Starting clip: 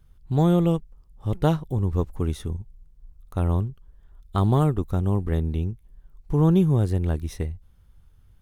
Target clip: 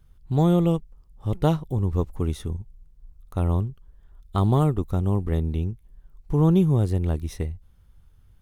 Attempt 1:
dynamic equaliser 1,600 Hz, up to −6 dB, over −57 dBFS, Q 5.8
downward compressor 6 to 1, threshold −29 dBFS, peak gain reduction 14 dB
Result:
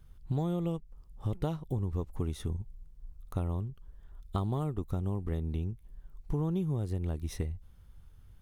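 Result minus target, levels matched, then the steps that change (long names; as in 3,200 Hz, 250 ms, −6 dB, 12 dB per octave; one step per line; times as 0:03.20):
downward compressor: peak gain reduction +14 dB
remove: downward compressor 6 to 1, threshold −29 dBFS, peak gain reduction 14 dB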